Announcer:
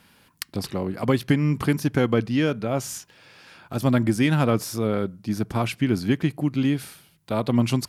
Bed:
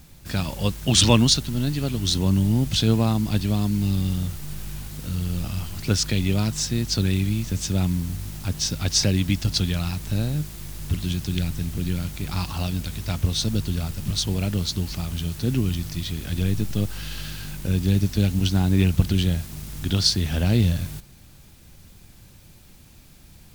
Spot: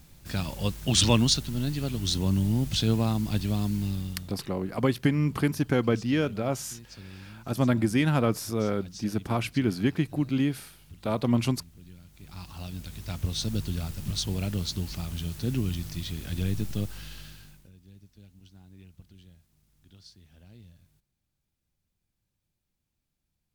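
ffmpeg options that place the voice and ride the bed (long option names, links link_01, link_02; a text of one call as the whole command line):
ffmpeg -i stem1.wav -i stem2.wav -filter_complex "[0:a]adelay=3750,volume=-3.5dB[link_01];[1:a]volume=13dB,afade=type=out:start_time=3.7:duration=0.69:silence=0.11885,afade=type=in:start_time=12.07:duration=1.5:silence=0.125893,afade=type=out:start_time=16.7:duration=1.01:silence=0.0446684[link_02];[link_01][link_02]amix=inputs=2:normalize=0" out.wav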